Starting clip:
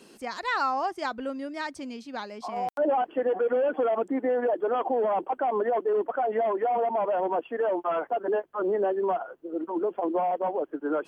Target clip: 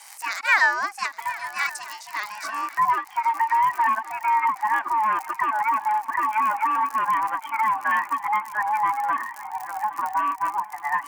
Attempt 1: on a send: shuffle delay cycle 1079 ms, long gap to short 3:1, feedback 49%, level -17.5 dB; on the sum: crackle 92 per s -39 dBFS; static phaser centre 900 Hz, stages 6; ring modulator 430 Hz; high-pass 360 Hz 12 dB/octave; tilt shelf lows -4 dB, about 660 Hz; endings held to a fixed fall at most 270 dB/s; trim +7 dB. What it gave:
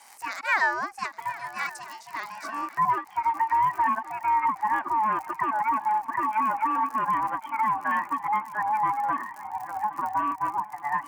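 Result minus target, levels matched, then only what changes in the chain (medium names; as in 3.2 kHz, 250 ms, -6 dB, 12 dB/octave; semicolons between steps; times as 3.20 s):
500 Hz band +4.0 dB
change: tilt shelf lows -12.5 dB, about 660 Hz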